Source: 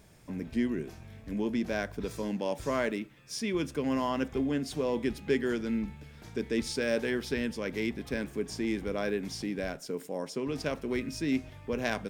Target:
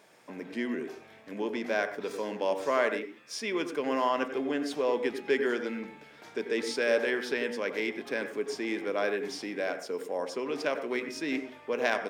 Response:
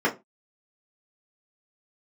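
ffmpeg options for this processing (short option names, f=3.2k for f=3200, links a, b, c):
-filter_complex "[0:a]highpass=470,highshelf=f=5k:g=-10.5,asplit=2[a][b];[1:a]atrim=start_sample=2205,adelay=86[c];[b][c]afir=irnorm=-1:irlink=0,volume=-24.5dB[d];[a][d]amix=inputs=2:normalize=0,volume=5.5dB"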